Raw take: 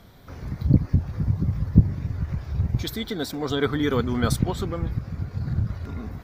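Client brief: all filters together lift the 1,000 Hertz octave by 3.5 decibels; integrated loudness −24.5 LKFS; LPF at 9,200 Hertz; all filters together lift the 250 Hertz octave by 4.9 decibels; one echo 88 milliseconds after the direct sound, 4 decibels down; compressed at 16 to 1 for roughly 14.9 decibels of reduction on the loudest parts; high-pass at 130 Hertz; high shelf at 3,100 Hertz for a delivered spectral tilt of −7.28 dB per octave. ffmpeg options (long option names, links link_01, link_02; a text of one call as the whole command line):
ffmpeg -i in.wav -af "highpass=130,lowpass=9200,equalizer=frequency=250:width_type=o:gain=7,equalizer=frequency=1000:width_type=o:gain=5,highshelf=frequency=3100:gain=-5,acompressor=threshold=-22dB:ratio=16,aecho=1:1:88:0.631,volume=4dB" out.wav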